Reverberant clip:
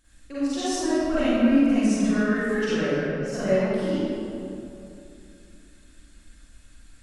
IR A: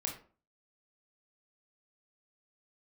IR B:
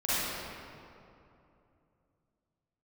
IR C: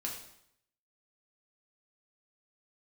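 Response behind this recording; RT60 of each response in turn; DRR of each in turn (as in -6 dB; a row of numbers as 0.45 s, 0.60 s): B; 0.40 s, 2.8 s, 0.70 s; 0.5 dB, -13.0 dB, -2.0 dB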